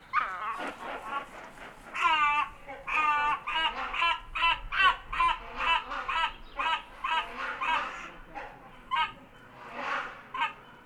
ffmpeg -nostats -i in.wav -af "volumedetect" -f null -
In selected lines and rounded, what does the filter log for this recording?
mean_volume: -31.3 dB
max_volume: -11.1 dB